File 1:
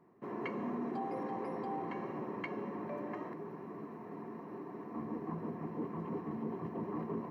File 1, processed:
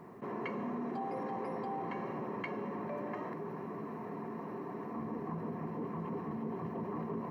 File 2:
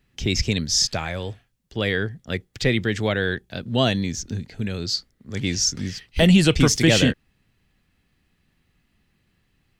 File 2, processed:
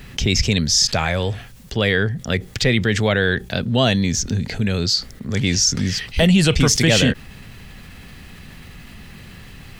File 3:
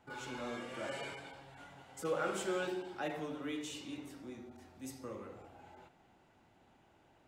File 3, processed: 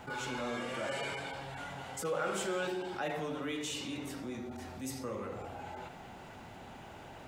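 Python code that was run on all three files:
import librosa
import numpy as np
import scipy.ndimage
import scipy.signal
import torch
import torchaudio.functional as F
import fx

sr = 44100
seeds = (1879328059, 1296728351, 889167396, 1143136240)

y = fx.peak_eq(x, sr, hz=320.0, db=-6.0, octaves=0.32)
y = fx.env_flatten(y, sr, amount_pct=50)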